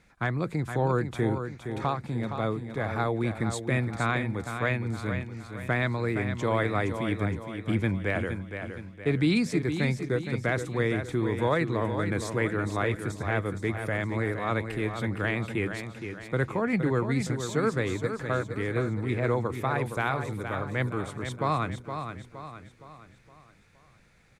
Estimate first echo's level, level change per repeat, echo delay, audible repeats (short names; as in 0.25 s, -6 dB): -8.0 dB, -7.0 dB, 0.466 s, 4